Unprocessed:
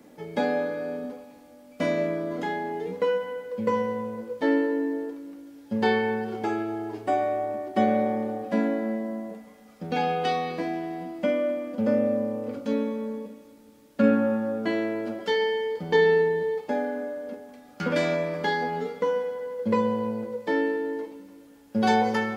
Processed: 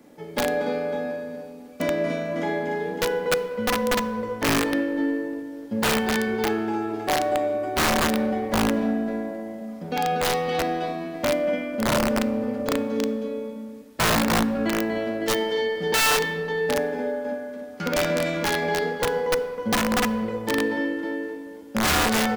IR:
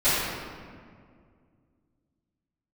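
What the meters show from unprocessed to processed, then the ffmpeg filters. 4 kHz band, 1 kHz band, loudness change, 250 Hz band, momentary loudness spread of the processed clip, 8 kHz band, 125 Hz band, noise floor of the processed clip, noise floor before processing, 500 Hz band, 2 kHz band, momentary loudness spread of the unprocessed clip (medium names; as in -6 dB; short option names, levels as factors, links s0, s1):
+10.5 dB, +2.5 dB, +2.5 dB, +2.0 dB, 10 LU, no reading, +4.5 dB, -40 dBFS, -51 dBFS, +1.0 dB, +6.0 dB, 12 LU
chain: -filter_complex "[0:a]aecho=1:1:58|240|242|297|370|557:0.355|0.562|0.1|0.501|0.112|0.376,aeval=exprs='(mod(5.96*val(0)+1,2)-1)/5.96':c=same,asplit=2[s0][s1];[1:a]atrim=start_sample=2205[s2];[s1][s2]afir=irnorm=-1:irlink=0,volume=0.0266[s3];[s0][s3]amix=inputs=2:normalize=0"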